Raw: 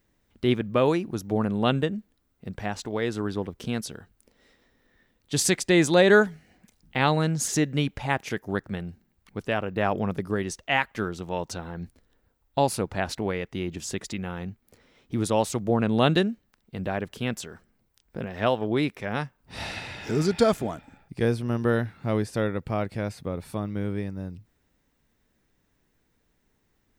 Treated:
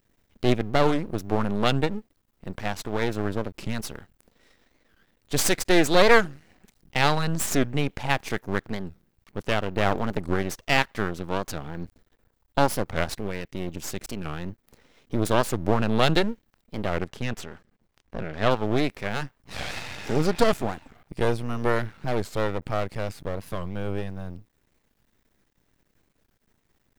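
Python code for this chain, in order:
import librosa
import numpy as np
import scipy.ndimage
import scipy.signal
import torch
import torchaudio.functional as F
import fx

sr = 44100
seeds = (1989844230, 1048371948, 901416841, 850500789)

y = fx.peak_eq(x, sr, hz=830.0, db=-14.0, octaves=1.6, at=(13.12, 14.27))
y = np.maximum(y, 0.0)
y = fx.high_shelf(y, sr, hz=7900.0, db=-10.5, at=(17.04, 18.51))
y = fx.record_warp(y, sr, rpm=45.0, depth_cents=250.0)
y = y * 10.0 ** (5.0 / 20.0)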